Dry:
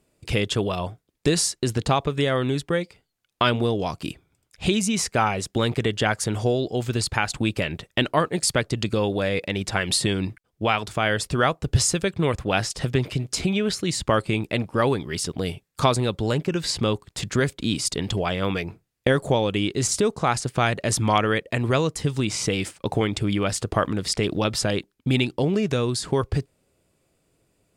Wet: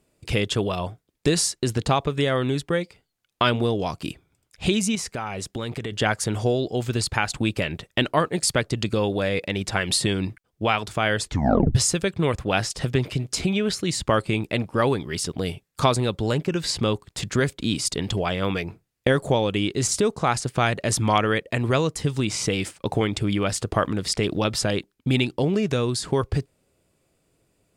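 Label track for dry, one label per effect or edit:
4.950000	5.920000	downward compressor 4 to 1, threshold −27 dBFS
11.210000	11.210000	tape stop 0.54 s

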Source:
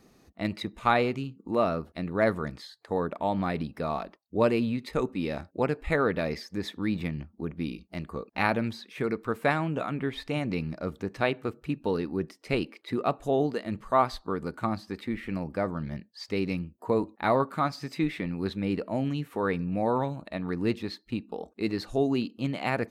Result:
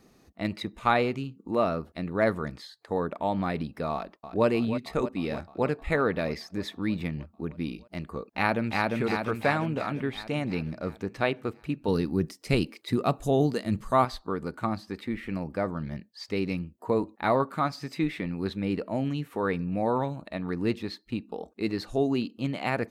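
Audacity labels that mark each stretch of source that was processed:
3.920000	4.460000	delay throw 310 ms, feedback 75%, level −11 dB
8.280000	8.950000	delay throw 350 ms, feedback 60%, level −1.5 dB
11.880000	14.050000	bass and treble bass +8 dB, treble +10 dB

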